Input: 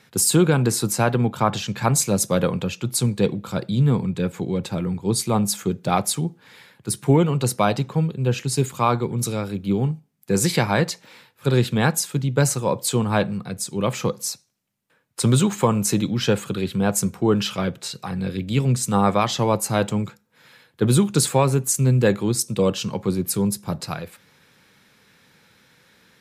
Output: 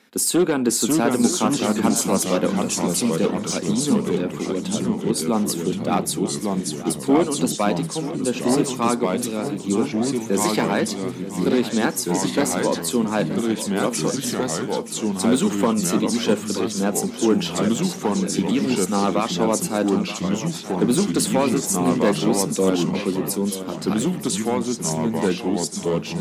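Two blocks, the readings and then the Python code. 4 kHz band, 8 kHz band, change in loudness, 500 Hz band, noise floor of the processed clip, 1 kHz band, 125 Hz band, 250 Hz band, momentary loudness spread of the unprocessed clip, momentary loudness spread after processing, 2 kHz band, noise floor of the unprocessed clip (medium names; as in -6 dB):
+1.0 dB, +1.0 dB, 0.0 dB, +2.0 dB, -32 dBFS, 0.0 dB, -6.5 dB, +3.5 dB, 9 LU, 5 LU, 0.0 dB, -61 dBFS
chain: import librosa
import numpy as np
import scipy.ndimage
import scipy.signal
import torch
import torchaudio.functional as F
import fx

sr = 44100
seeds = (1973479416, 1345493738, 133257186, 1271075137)

p1 = np.clip(x, -10.0 ** (-10.5 / 20.0), 10.0 ** (-10.5 / 20.0))
p2 = fx.low_shelf_res(p1, sr, hz=180.0, db=-10.5, q=3.0)
p3 = fx.echo_pitch(p2, sr, ms=503, semitones=-2, count=2, db_per_echo=-3.0)
p4 = p3 + fx.echo_feedback(p3, sr, ms=928, feedback_pct=43, wet_db=-13.5, dry=0)
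y = F.gain(torch.from_numpy(p4), -2.0).numpy()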